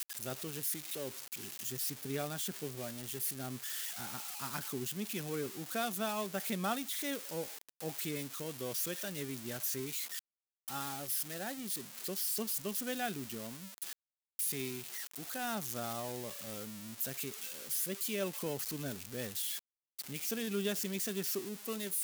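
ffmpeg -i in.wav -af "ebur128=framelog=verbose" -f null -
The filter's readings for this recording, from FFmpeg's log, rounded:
Integrated loudness:
  I:         -37.6 LUFS
  Threshold: -47.6 LUFS
Loudness range:
  LRA:         1.8 LU
  Threshold: -57.7 LUFS
  LRA low:   -38.6 LUFS
  LRA high:  -36.8 LUFS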